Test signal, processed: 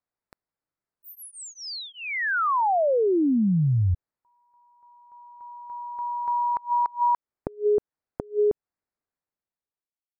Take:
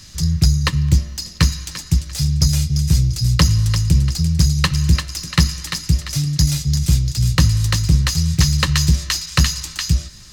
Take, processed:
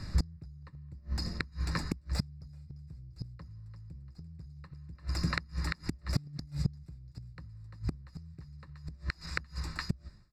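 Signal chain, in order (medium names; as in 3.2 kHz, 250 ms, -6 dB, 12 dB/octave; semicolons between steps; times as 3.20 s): fade out at the end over 1.20 s; compression 4:1, threshold -24 dBFS; boxcar filter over 14 samples; inverted gate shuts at -21 dBFS, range -27 dB; trim +4.5 dB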